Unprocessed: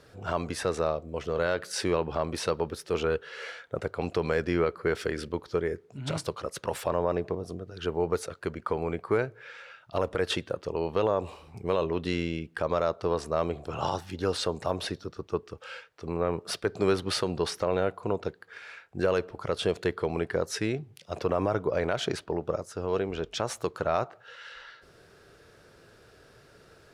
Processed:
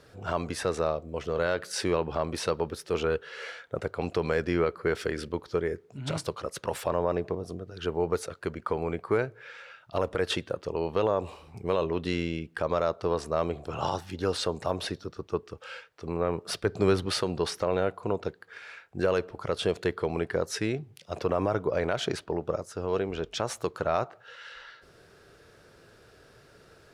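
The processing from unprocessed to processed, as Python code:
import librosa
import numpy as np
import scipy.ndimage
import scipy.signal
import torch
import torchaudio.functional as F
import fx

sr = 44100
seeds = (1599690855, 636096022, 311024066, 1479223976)

y = fx.low_shelf(x, sr, hz=150.0, db=8.0, at=(16.52, 17.06))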